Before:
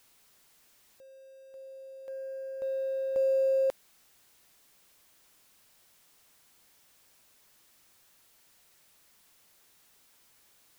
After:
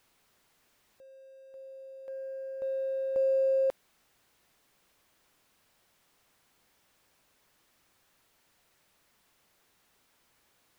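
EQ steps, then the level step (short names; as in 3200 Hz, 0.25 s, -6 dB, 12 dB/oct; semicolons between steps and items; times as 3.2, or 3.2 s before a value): high shelf 3700 Hz -9.5 dB; 0.0 dB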